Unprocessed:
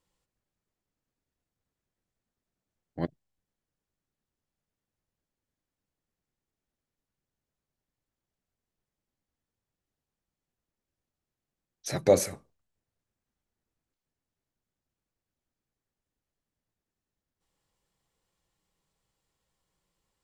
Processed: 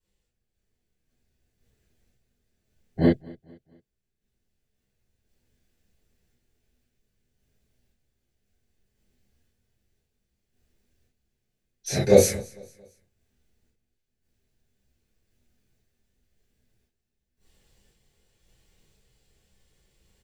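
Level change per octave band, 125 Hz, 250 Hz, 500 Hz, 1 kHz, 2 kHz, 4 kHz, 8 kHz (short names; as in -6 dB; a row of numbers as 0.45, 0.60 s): +10.0, +11.0, +6.5, +2.0, +7.0, +7.0, +6.5 dB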